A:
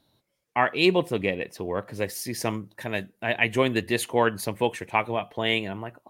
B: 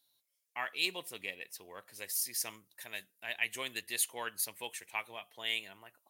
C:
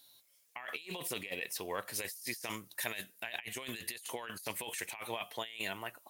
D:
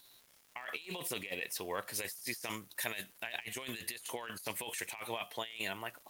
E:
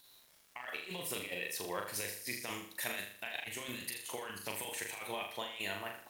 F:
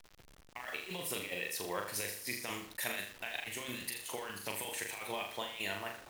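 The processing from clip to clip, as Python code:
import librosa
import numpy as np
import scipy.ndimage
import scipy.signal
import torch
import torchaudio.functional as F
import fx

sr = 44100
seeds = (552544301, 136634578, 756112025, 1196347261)

y1 = F.preemphasis(torch.from_numpy(x), 0.97).numpy()
y2 = fx.over_compress(y1, sr, threshold_db=-48.0, ratio=-1.0)
y2 = y2 * librosa.db_to_amplitude(5.5)
y3 = fx.dmg_crackle(y2, sr, seeds[0], per_s=340.0, level_db=-50.0)
y4 = fx.room_flutter(y3, sr, wall_m=6.8, rt60_s=0.53)
y4 = y4 * librosa.db_to_amplitude(-2.0)
y5 = fx.delta_hold(y4, sr, step_db=-49.5)
y5 = y5 * librosa.db_to_amplitude(1.0)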